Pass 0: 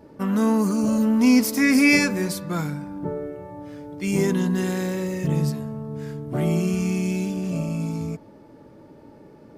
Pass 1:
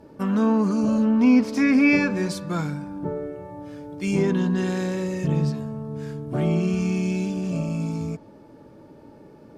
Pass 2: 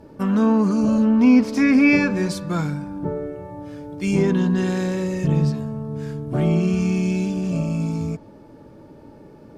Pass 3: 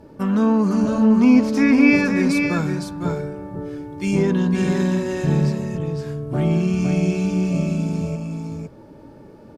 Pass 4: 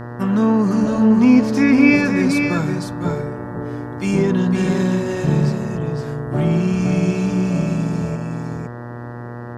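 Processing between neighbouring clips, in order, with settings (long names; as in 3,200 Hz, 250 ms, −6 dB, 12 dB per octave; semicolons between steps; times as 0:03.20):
notch filter 2,000 Hz, Q 14; treble cut that deepens with the level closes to 2,500 Hz, closed at −14.5 dBFS
low-shelf EQ 86 Hz +7 dB; level +2 dB
single-tap delay 509 ms −5 dB
hum with harmonics 120 Hz, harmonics 16, −33 dBFS −5 dB per octave; level +1.5 dB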